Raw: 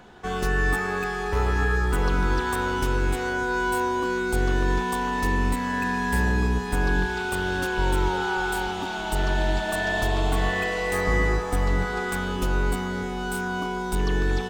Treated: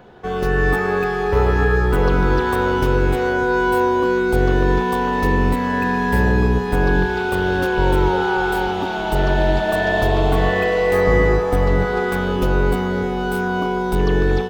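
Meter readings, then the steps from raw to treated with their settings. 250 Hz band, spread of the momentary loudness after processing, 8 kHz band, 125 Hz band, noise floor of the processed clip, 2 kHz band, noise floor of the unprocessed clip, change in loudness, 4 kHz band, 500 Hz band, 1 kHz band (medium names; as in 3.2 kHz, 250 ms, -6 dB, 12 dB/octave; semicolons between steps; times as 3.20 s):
+8.0 dB, 4 LU, -4.0 dB, +7.0 dB, -23 dBFS, +4.5 dB, -30 dBFS, +7.0 dB, +2.5 dB, +10.5 dB, +6.5 dB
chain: graphic EQ 125/500/8000 Hz +6/+8/-10 dB; level rider gain up to 4.5 dB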